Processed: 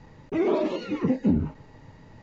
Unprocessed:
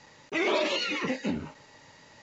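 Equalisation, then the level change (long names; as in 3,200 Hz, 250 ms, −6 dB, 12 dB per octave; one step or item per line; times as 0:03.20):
notch filter 570 Hz, Q 12
dynamic equaliser 2,500 Hz, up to −7 dB, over −45 dBFS, Q 0.74
spectral tilt −4.5 dB per octave
0.0 dB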